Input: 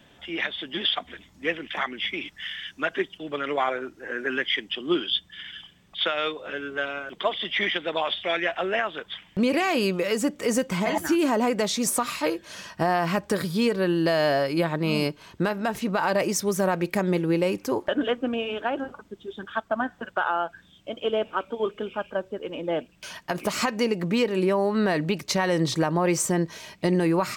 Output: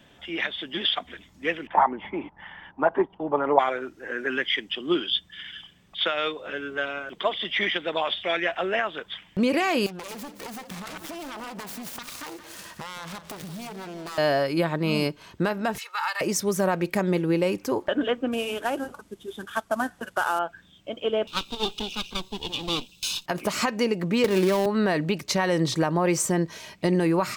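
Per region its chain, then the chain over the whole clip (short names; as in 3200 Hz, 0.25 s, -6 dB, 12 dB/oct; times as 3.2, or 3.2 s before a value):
1.67–3.59 sample leveller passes 1 + synth low-pass 890 Hz, resonance Q 6
9.86–14.18 self-modulated delay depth 0.92 ms + compressor 8:1, threshold -34 dBFS + feedback echo 0.173 s, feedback 36%, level -12 dB
15.78–16.21 HPF 1100 Hz 24 dB/oct + comb 2.3 ms, depth 77%
18.32–20.39 CVSD 64 kbps + high shelf 7100 Hz +7 dB
21.27–23.26 minimum comb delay 0.76 ms + resonant high shelf 2500 Hz +11.5 dB, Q 3
24.24–24.66 switching dead time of 0.16 ms + three-band squash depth 100%
whole clip: dry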